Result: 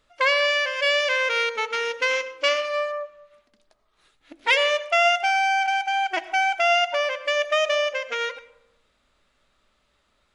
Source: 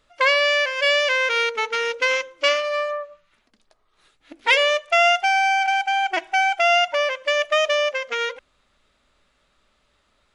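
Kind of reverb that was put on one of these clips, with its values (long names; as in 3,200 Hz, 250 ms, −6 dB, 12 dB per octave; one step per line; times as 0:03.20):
comb and all-pass reverb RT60 0.9 s, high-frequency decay 0.45×, pre-delay 55 ms, DRR 15 dB
level −2.5 dB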